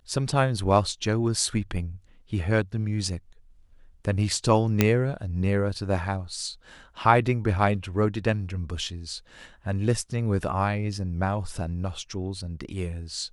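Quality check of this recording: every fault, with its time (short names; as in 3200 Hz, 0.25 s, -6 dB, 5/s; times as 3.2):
4.81 pop -4 dBFS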